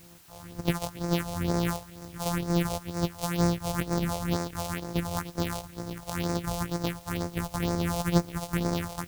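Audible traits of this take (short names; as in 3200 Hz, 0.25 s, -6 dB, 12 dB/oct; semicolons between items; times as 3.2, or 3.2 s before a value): a buzz of ramps at a fixed pitch in blocks of 256 samples; phasing stages 4, 2.1 Hz, lowest notch 280–3000 Hz; a quantiser's noise floor 10-bit, dither triangular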